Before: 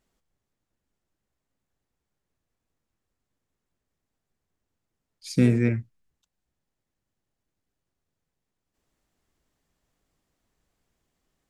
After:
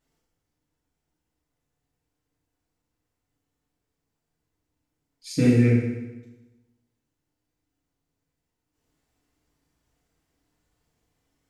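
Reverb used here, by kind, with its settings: FDN reverb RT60 1.1 s, low-frequency decay 1.1×, high-frequency decay 0.9×, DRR -5.5 dB; trim -4.5 dB

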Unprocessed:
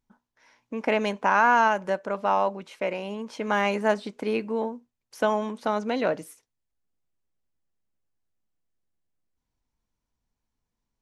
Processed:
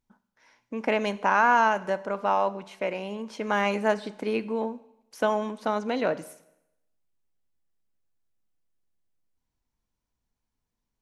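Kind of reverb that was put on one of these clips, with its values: Schroeder reverb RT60 0.85 s, combs from 32 ms, DRR 16.5 dB; trim -1 dB

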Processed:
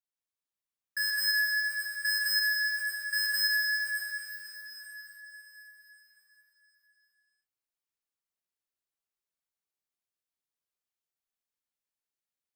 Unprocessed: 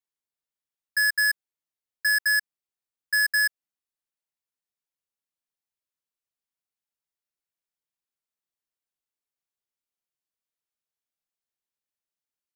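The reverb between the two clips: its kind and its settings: plate-style reverb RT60 4.7 s, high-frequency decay 1×, DRR -5 dB; trim -8.5 dB

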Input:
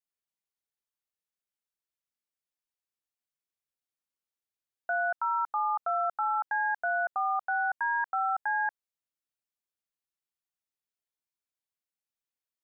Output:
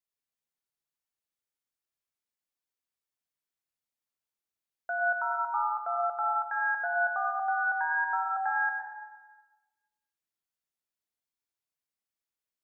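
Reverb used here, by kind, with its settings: plate-style reverb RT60 1.2 s, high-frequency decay 0.8×, pre-delay 80 ms, DRR 0 dB; trim -3 dB

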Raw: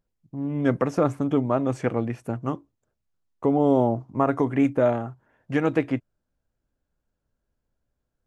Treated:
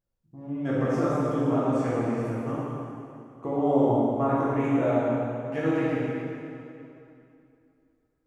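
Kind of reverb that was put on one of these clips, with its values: plate-style reverb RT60 2.7 s, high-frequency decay 0.85×, DRR -9.5 dB; trim -11.5 dB

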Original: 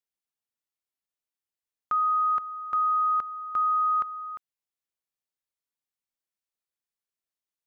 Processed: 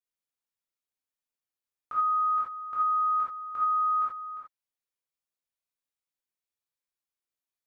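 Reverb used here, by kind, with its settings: gated-style reverb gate 110 ms flat, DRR -7.5 dB; trim -10 dB

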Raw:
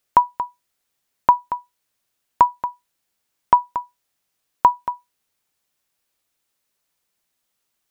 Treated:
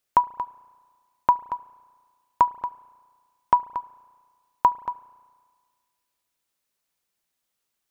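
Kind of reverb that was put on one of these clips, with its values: spring tank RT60 1.7 s, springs 34 ms, chirp 60 ms, DRR 19 dB; trim -4.5 dB

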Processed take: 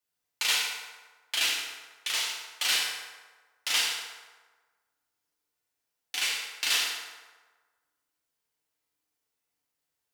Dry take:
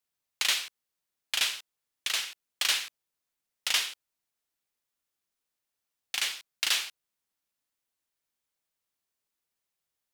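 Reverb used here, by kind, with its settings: FDN reverb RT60 1.4 s, low-frequency decay 0.7×, high-frequency decay 0.6×, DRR -6 dB; trim -4 dB

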